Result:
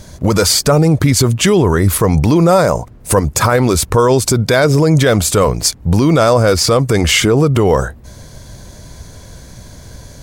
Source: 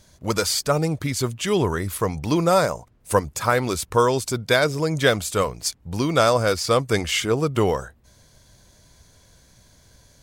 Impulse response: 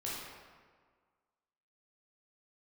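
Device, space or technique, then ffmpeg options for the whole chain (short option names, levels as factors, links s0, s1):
mastering chain: -af "equalizer=f=3100:t=o:w=0.77:g=-2,acompressor=threshold=0.0562:ratio=1.5,tiltshelf=f=840:g=3,alimiter=level_in=8.41:limit=0.891:release=50:level=0:latency=1,volume=0.891"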